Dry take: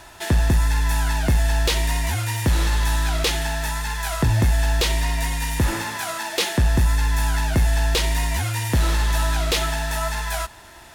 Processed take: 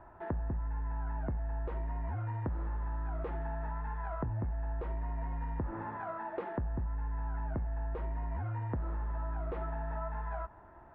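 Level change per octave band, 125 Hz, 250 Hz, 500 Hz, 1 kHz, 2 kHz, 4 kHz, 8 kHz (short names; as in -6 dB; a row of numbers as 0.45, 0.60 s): -15.0 dB, -14.5 dB, -13.0 dB, -13.0 dB, -23.5 dB, under -40 dB, under -40 dB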